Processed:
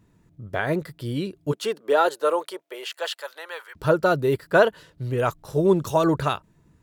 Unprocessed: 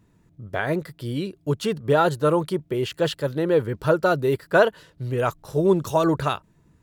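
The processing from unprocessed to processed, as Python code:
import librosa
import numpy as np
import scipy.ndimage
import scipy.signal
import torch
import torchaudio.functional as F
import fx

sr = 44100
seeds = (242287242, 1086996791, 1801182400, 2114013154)

y = fx.highpass(x, sr, hz=fx.line((1.51, 270.0), (3.75, 1000.0)), slope=24, at=(1.51, 3.75), fade=0.02)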